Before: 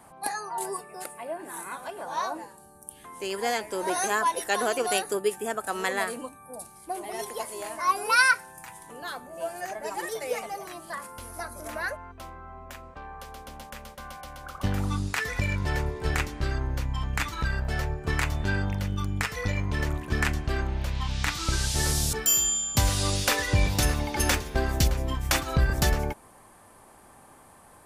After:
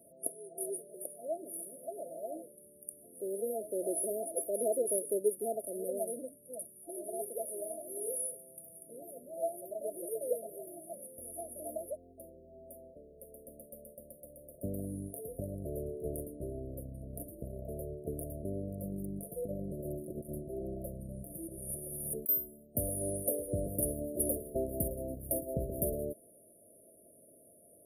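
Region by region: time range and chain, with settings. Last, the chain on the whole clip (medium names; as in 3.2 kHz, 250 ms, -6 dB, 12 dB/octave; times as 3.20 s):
18.83–22.29 s: comb 5.6 ms, depth 54% + compressor with a negative ratio -28 dBFS, ratio -0.5
whole clip: high-pass 500 Hz 6 dB/octave; FFT band-reject 690–9300 Hz; dynamic bell 1.4 kHz, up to +6 dB, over -57 dBFS, Q 2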